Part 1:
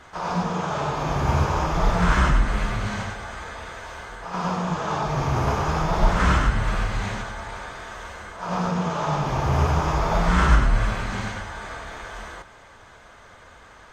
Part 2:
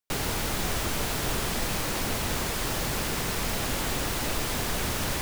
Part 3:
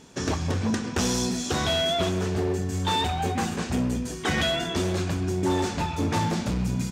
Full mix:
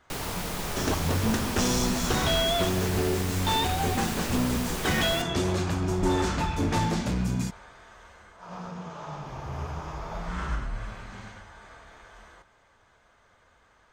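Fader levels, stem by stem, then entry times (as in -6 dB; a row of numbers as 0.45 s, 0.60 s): -14.0 dB, -4.5 dB, -1.0 dB; 0.00 s, 0.00 s, 0.60 s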